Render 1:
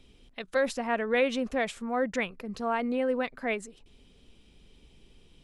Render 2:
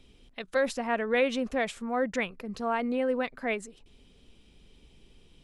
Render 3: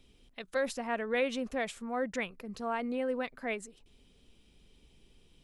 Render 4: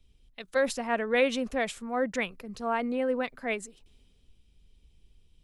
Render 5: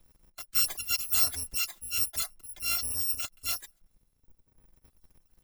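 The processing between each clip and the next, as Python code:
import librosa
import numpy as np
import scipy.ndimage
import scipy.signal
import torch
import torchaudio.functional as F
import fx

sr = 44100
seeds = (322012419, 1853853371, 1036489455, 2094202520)

y1 = x
y2 = fx.high_shelf(y1, sr, hz=7600.0, db=6.0)
y2 = F.gain(torch.from_numpy(y2), -5.0).numpy()
y3 = fx.band_widen(y2, sr, depth_pct=40)
y3 = F.gain(torch.from_numpy(y3), 4.5).numpy()
y4 = fx.bit_reversed(y3, sr, seeds[0], block=256)
y4 = fx.dereverb_blind(y4, sr, rt60_s=1.6)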